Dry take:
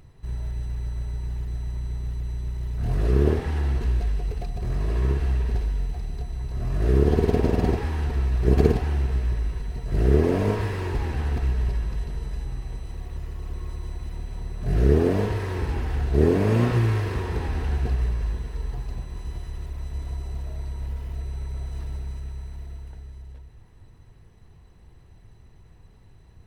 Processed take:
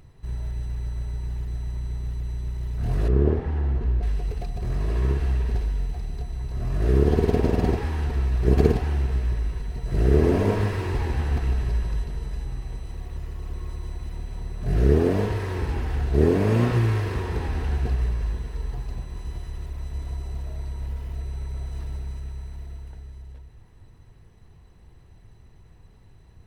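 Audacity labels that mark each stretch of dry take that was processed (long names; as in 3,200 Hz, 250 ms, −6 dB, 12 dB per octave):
3.080000	4.030000	low-pass filter 1,000 Hz 6 dB per octave
9.680000	12.020000	single-tap delay 153 ms −7 dB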